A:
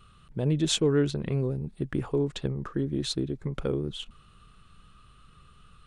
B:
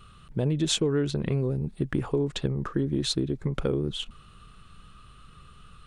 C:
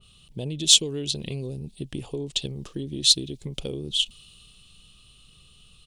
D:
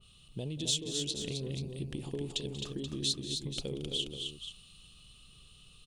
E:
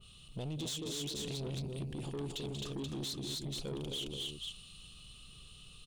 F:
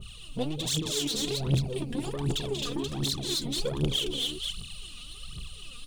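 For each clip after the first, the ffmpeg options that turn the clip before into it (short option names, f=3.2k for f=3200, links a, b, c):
-af "acompressor=threshold=-26dB:ratio=6,volume=4.5dB"
-af "firequalizer=gain_entry='entry(730,0);entry(1400,-14);entry(2900,12)':delay=0.05:min_phase=1,asoftclip=type=hard:threshold=-5dB,adynamicequalizer=threshold=0.0178:dfrequency=2200:dqfactor=0.7:tfrequency=2200:tqfactor=0.7:attack=5:release=100:ratio=0.375:range=3.5:mode=boostabove:tftype=highshelf,volume=-6dB"
-af "acompressor=threshold=-30dB:ratio=2.5,aecho=1:1:186|226|263|481:0.158|0.188|0.531|0.299,volume=-4.5dB"
-af "alimiter=level_in=5dB:limit=-24dB:level=0:latency=1:release=32,volume=-5dB,asoftclip=type=tanh:threshold=-38dB,volume=3dB"
-af "aphaser=in_gain=1:out_gain=1:delay=4.3:decay=0.72:speed=1.3:type=triangular,volume=7dB"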